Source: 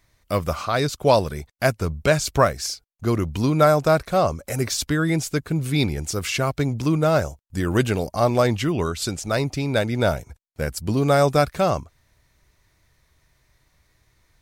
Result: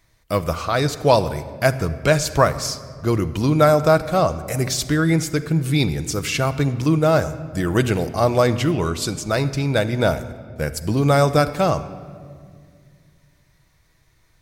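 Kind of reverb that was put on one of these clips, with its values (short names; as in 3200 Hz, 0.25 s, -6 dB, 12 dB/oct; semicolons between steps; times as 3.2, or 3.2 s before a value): shoebox room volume 3500 m³, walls mixed, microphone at 0.63 m; gain +1.5 dB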